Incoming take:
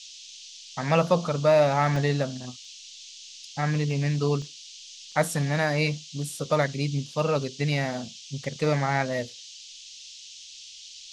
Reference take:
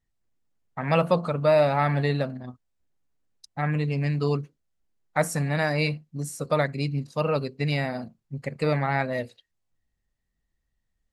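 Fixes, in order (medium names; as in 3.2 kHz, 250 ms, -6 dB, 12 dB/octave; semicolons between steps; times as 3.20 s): interpolate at 1.96/2.65/3.91/4.42/5.12 s, 1.4 ms; noise print and reduce 30 dB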